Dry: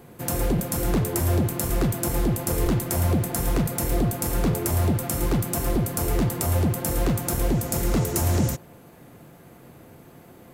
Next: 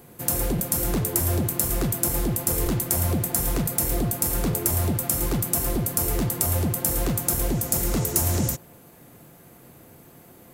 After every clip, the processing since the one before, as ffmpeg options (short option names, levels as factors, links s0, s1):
-af "highshelf=f=5600:g=10,volume=0.75"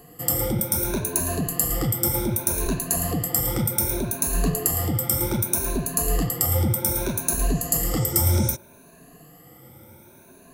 -af "afftfilt=real='re*pow(10,17/40*sin(2*PI*(1.5*log(max(b,1)*sr/1024/100)/log(2)-(0.65)*(pts-256)/sr)))':imag='im*pow(10,17/40*sin(2*PI*(1.5*log(max(b,1)*sr/1024/100)/log(2)-(0.65)*(pts-256)/sr)))':win_size=1024:overlap=0.75,volume=0.75"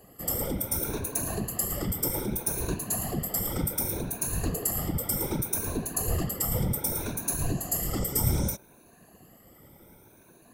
-af "afftfilt=real='hypot(re,im)*cos(2*PI*random(0))':imag='hypot(re,im)*sin(2*PI*random(1))':win_size=512:overlap=0.75"